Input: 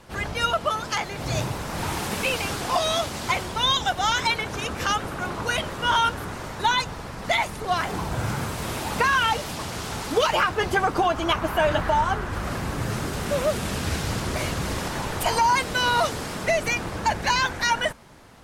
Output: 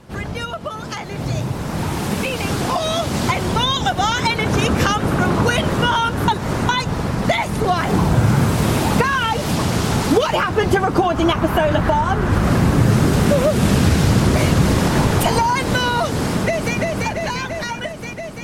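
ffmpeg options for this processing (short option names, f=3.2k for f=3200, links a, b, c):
-filter_complex "[0:a]asplit=2[a][b];[b]afade=t=in:st=14.64:d=0.01,afade=t=out:st=15.14:d=0.01,aecho=0:1:320|640|960|1280|1600|1920|2240|2560|2880|3200|3520|3840:0.530884|0.371619|0.260133|0.182093|0.127465|0.0892257|0.062458|0.0437206|0.0306044|0.0214231|0.0149962|0.0104973[c];[a][c]amix=inputs=2:normalize=0,asplit=2[d][e];[e]afade=t=in:st=16.18:d=0.01,afade=t=out:st=16.77:d=0.01,aecho=0:1:340|680|1020|1360|1700|2040|2380|2720|3060|3400|3740|4080:0.944061|0.708046|0.531034|0.398276|0.298707|0.22403|0.168023|0.126017|0.0945127|0.0708845|0.0531634|0.0398725[f];[d][f]amix=inputs=2:normalize=0,asplit=3[g][h][i];[g]atrim=end=6.282[j];[h]atrim=start=6.278:end=6.692,asetpts=PTS-STARTPTS,areverse[k];[i]atrim=start=6.688[l];[j][k]acrossfade=d=0.004:c1=hsin:c2=hsin[m];[m][l]acrossfade=d=0.004:c1=hsin:c2=hsin,acompressor=threshold=-26dB:ratio=5,equalizer=f=170:w=0.44:g=9.5,dynaudnorm=f=770:g=7:m=11.5dB"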